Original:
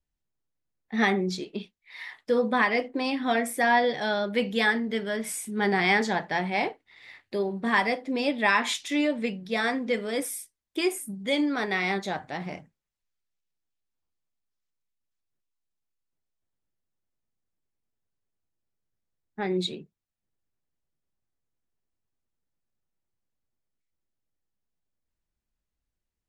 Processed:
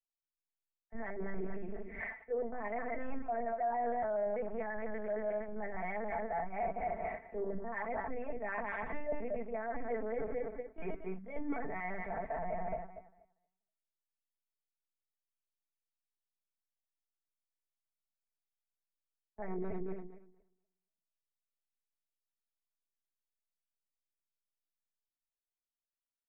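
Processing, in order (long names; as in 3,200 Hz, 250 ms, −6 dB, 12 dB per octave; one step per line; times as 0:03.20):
feedback delay that plays each chunk backwards 118 ms, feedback 54%, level −5 dB
linear-prediction vocoder at 8 kHz pitch kept
parametric band 690 Hz +12 dB 0.87 octaves
reversed playback
downward compressor 10 to 1, threshold −30 dBFS, peak gain reduction 21 dB
reversed playback
Butterworth low-pass 2,200 Hz 48 dB per octave
comb filter 4.5 ms, depth 90%
brickwall limiter −26 dBFS, peak gain reduction 9.5 dB
mains-hum notches 50/100/150/200/250/300 Hz
multiband upward and downward expander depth 70%
level −2.5 dB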